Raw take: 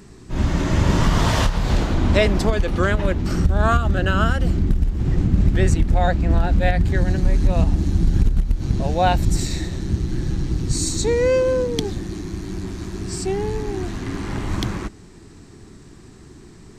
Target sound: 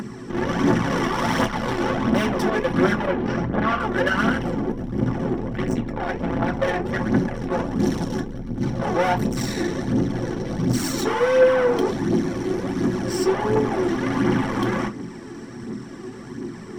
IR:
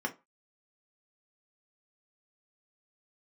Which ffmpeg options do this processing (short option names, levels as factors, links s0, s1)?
-filter_complex "[0:a]asplit=3[s0][s1][s2];[s0]afade=t=out:st=5.38:d=0.02[s3];[s1]asubboost=boost=3.5:cutoff=72,afade=t=in:st=5.38:d=0.02,afade=t=out:st=6.19:d=0.02[s4];[s2]afade=t=in:st=6.19:d=0.02[s5];[s3][s4][s5]amix=inputs=3:normalize=0,alimiter=limit=0.335:level=0:latency=1:release=107,asettb=1/sr,asplit=3[s6][s7][s8];[s6]atrim=end=7.794[s9];[s7]atrim=start=7.79:end=8.2,asetpts=PTS-STARTPTS,afade=t=in:d=0.004:c=qsin,afade=t=out:st=0.406:d=0.004:c=qsin,highshelf=f=2100:g=10[s10];[s8]atrim=start=8.196[s11];[s9][s10]acrossfade=d=0.004:c1=hsin:c2=qsin[s12];[s12][s11]acrossfade=d=0.004:c1=qsin:c2=hsin,aeval=exprs='(tanh(28.2*val(0)+0.55)-tanh(0.55))/28.2':c=same,asettb=1/sr,asplit=3[s13][s14][s15];[s13]atrim=end=3.064[s16];[s14]atrim=start=3.06:end=3.8,asetpts=PTS-STARTPTS,afade=t=in:d=0.004:c=qsin,afade=t=out:st=0.736:d=0.004:c=qsin,lowpass=3800[s17];[s15]atrim=start=3.796[s18];[s16][s17]acrossfade=d=0.004:c1=hsin:c2=qsin[s19];[s19][s18]acrossfade=d=0.004:c1=qsin:c2=hsin[s20];[1:a]atrim=start_sample=2205[s21];[s20][s21]afir=irnorm=-1:irlink=0,acompressor=mode=upward:threshold=0.0126:ratio=2.5,aphaser=in_gain=1:out_gain=1:delay=2.9:decay=0.44:speed=1.4:type=triangular,volume=1.88"